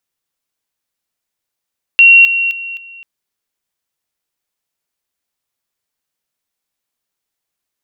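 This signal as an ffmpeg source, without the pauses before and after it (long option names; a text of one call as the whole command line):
ffmpeg -f lavfi -i "aevalsrc='pow(10,(-2-10*floor(t/0.26))/20)*sin(2*PI*2740*t)':duration=1.04:sample_rate=44100" out.wav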